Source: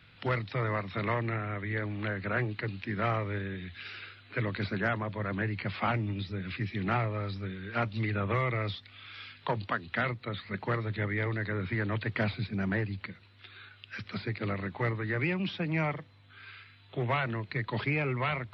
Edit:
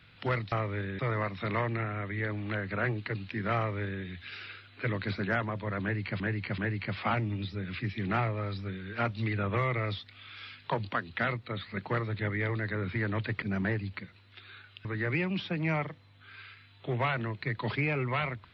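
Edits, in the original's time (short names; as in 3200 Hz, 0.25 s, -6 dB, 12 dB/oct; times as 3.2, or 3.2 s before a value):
3.09–3.56 copy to 0.52
5.35–5.73 loop, 3 plays
12.19–12.49 cut
13.92–14.94 cut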